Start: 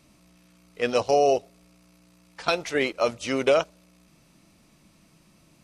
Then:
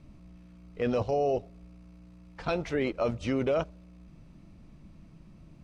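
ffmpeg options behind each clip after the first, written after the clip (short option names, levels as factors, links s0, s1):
-af "aemphasis=mode=reproduction:type=riaa,alimiter=limit=0.133:level=0:latency=1:release=10,volume=0.75"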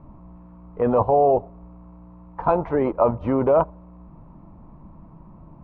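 -af "lowpass=f=970:t=q:w=5,volume=2.11"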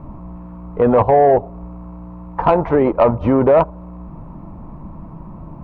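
-filter_complex "[0:a]asplit=2[s0][s1];[s1]acompressor=threshold=0.0562:ratio=6,volume=1.26[s2];[s0][s2]amix=inputs=2:normalize=0,asoftclip=type=tanh:threshold=0.473,volume=1.58"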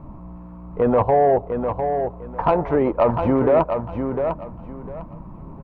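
-af "aecho=1:1:702|1404|2106:0.473|0.109|0.025,volume=0.596"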